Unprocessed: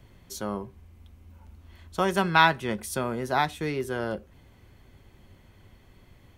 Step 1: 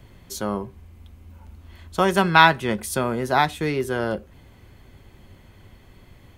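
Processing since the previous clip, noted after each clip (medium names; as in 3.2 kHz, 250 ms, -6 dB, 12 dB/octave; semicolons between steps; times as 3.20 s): band-stop 5.7 kHz, Q 26; trim +5.5 dB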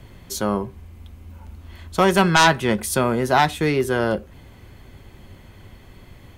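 sine folder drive 7 dB, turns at -1 dBFS; trim -6.5 dB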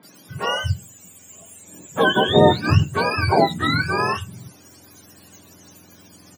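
spectrum inverted on a logarithmic axis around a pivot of 770 Hz; three bands offset in time mids, highs, lows 30/350 ms, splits 160/2300 Hz; trim +2.5 dB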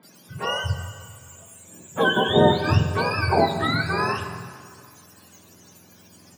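plate-style reverb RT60 2.1 s, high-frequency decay 0.8×, DRR 7 dB; trim -3.5 dB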